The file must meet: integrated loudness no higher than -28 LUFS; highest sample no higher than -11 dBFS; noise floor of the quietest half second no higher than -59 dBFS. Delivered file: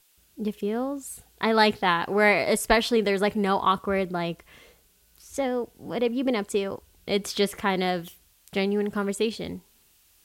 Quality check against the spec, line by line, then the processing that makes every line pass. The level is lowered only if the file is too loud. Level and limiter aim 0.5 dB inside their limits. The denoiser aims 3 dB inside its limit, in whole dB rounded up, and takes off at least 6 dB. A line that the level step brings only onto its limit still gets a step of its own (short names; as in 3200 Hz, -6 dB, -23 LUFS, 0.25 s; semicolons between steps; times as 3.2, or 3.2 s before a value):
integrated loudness -25.5 LUFS: fail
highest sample -6.5 dBFS: fail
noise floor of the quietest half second -61 dBFS: OK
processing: gain -3 dB; limiter -11.5 dBFS